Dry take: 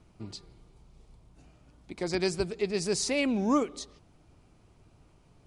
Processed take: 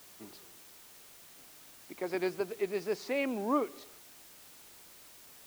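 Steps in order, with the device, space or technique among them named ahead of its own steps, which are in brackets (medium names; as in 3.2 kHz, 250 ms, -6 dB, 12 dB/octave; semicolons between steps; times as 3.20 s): wax cylinder (band-pass 330–2300 Hz; wow and flutter; white noise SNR 17 dB); trim -1.5 dB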